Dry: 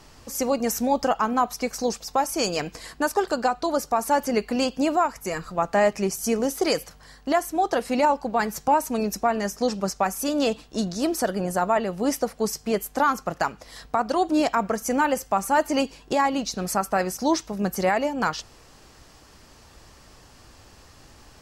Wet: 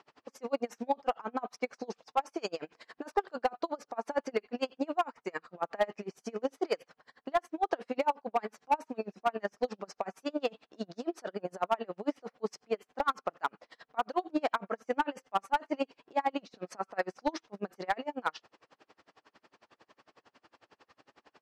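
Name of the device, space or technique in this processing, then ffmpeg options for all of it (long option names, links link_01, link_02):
helicopter radio: -af "highpass=320,lowpass=2900,aeval=exprs='val(0)*pow(10,-34*(0.5-0.5*cos(2*PI*11*n/s))/20)':channel_layout=same,asoftclip=type=hard:threshold=-18dB,volume=-1.5dB"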